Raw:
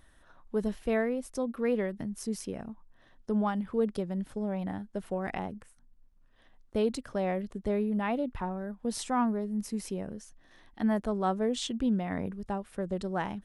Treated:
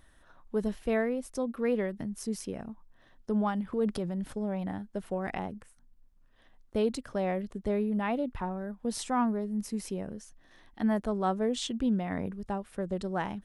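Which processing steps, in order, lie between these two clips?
3.72–4.33 transient shaper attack -4 dB, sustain +6 dB

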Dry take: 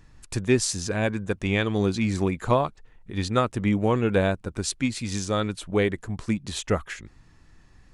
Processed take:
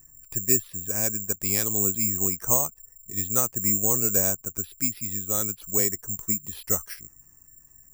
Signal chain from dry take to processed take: spectral gate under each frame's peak -30 dB strong; high shelf 6100 Hz -9 dB; careless resampling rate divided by 6×, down filtered, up zero stuff; gain -8.5 dB

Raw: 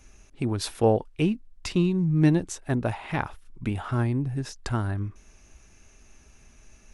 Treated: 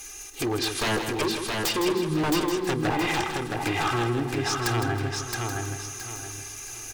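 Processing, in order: block floating point 5-bit; treble ducked by the level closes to 1300 Hz, closed at -22.5 dBFS; RIAA curve recording; comb 2.5 ms, depth 81%; de-hum 82.16 Hz, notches 6; in parallel at -0.5 dB: compressor, threshold -37 dBFS, peak gain reduction 20 dB; on the sum: wavefolder -24 dBFS; on a send: feedback echo 0.669 s, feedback 33%, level -3.5 dB; on the sum: lo-fi delay 0.16 s, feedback 35%, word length 10-bit, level -7.5 dB; gain +3.5 dB

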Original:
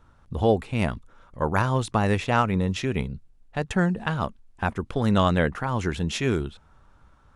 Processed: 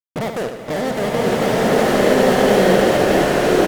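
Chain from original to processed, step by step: resonant low shelf 610 Hz +12 dB, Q 1.5; compressor 8:1, threshold -17 dBFS, peak gain reduction 14 dB; vocal tract filter u; fuzz box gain 42 dB, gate -43 dBFS; feedback echo 0.149 s, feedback 55%, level -8 dB; speed mistake 7.5 ips tape played at 15 ips; bloom reverb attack 1.48 s, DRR -9.5 dB; gain -7.5 dB

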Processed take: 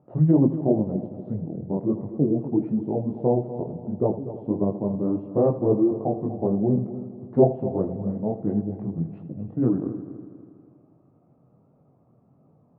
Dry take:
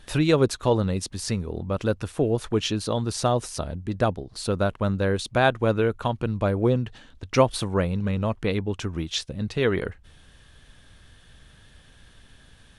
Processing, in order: chorus voices 2, 1.4 Hz, delay 22 ms, depth 3.2 ms; formant shift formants -5 st; Chebyshev band-pass 130–720 Hz, order 3; multi-head echo 81 ms, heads first and third, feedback 58%, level -14 dB; gain +5 dB

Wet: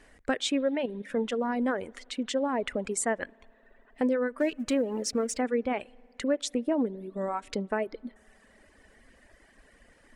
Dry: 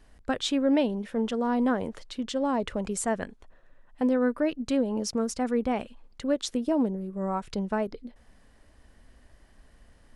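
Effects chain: 4.4–5.41 G.711 law mismatch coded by mu; tone controls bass -5 dB, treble -3 dB; 0.68–1.1 level quantiser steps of 9 dB; graphic EQ 250/500/2000/8000 Hz +5/+6/+10/+9 dB; compressor 1.5:1, threshold -33 dBFS, peak gain reduction 7 dB; spring tank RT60 3.3 s, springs 55 ms, chirp 20 ms, DRR 17 dB; reverb removal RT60 1.1 s

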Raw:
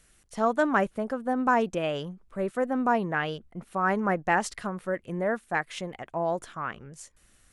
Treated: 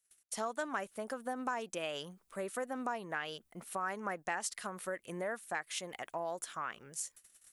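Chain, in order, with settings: gate -58 dBFS, range -27 dB; RIAA curve recording; compressor 3:1, threshold -35 dBFS, peak gain reduction 12.5 dB; gain -2 dB

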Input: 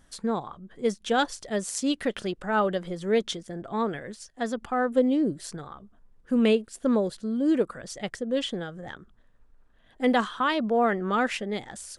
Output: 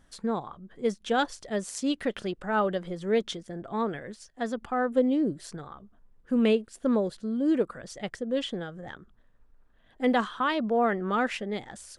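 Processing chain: high shelf 5000 Hz -5.5 dB; gain -1.5 dB

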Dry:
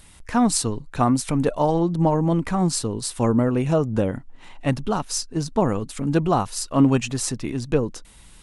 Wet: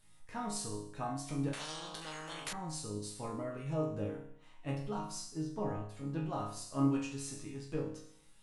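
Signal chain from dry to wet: 5.25–6.2 tone controls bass 0 dB, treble -8 dB; resonator bank G#2 sus4, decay 0.66 s; 1.53–2.53 spectral compressor 10:1; gain +1 dB

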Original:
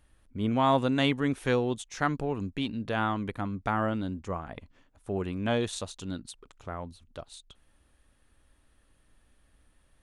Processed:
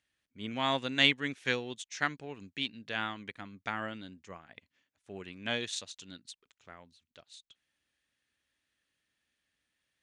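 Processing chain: HPF 120 Hz 12 dB/oct; band shelf 3500 Hz +12.5 dB 2.5 oct; upward expander 1.5:1, over -42 dBFS; gain -5.5 dB

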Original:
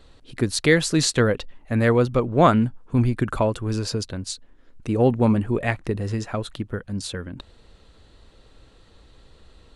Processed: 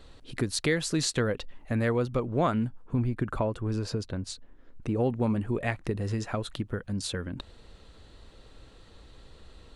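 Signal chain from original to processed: 2.82–4.97 high shelf 2800 Hz -9.5 dB; compressor 2:1, threshold -30 dBFS, peak gain reduction 11 dB

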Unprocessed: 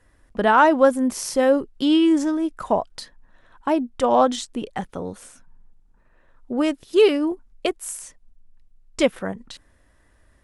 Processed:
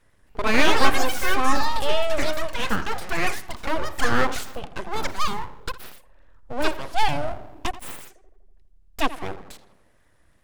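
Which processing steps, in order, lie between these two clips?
tape echo 83 ms, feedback 66%, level -12.5 dB, low-pass 1900 Hz; full-wave rectifier; echoes that change speed 0.267 s, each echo +6 st, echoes 3; gain -1.5 dB

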